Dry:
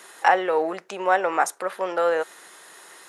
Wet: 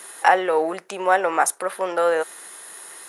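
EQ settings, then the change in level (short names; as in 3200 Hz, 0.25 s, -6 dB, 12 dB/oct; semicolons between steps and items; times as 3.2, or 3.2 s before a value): bell 10000 Hz +12.5 dB 0.37 oct; +2.0 dB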